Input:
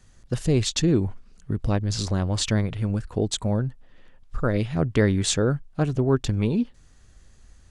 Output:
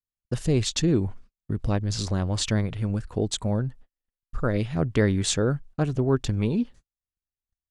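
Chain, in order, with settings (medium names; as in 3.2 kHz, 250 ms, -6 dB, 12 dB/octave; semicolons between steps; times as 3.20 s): gate -41 dBFS, range -45 dB; trim -1.5 dB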